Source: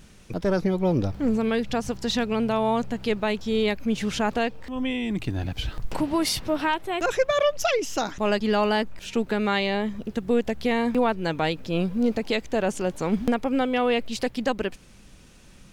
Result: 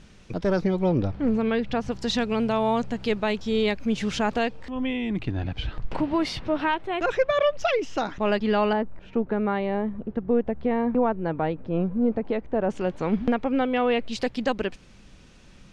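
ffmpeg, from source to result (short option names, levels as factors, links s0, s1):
-af "asetnsamples=n=441:p=0,asendcmd='0.89 lowpass f 3400;1.92 lowpass f 7300;4.7 lowpass f 3300;8.73 lowpass f 1200;12.7 lowpass f 3100;14.07 lowpass f 5900',lowpass=5900"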